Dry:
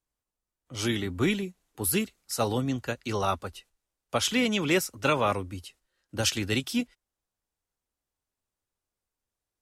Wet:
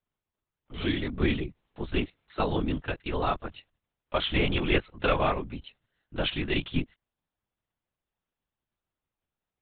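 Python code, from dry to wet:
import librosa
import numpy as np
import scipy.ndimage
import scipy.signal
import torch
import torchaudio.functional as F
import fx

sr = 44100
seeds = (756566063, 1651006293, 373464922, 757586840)

y = fx.lpc_vocoder(x, sr, seeds[0], excitation='whisper', order=10)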